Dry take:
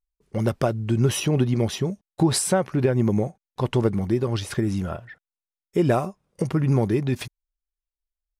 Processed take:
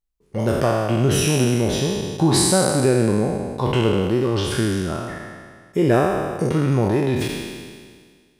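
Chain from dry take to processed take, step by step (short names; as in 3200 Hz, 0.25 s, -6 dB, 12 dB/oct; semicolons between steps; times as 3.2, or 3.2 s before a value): spectral trails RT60 1.81 s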